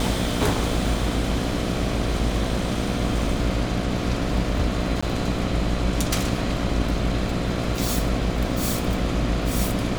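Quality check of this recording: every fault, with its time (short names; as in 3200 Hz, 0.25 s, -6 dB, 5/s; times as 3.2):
buzz 60 Hz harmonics 12 -28 dBFS
5.01–5.03 gap 15 ms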